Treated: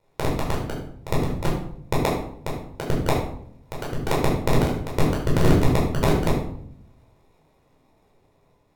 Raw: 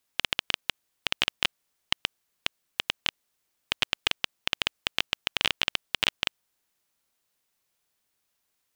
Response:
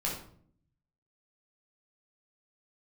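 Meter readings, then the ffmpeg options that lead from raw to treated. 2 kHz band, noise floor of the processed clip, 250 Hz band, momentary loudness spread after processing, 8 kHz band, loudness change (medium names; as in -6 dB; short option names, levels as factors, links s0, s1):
-3.5 dB, -63 dBFS, +23.0 dB, 14 LU, +3.0 dB, +4.5 dB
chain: -filter_complex "[0:a]dynaudnorm=f=830:g=5:m=3.76,aexciter=amount=3.5:drive=7.5:freq=2200,acrusher=samples=29:mix=1:aa=0.000001,aeval=exprs='val(0)*sin(2*PI*190*n/s)':c=same[s0];[1:a]atrim=start_sample=2205,asetrate=36603,aresample=44100[s1];[s0][s1]afir=irnorm=-1:irlink=0,volume=0.376"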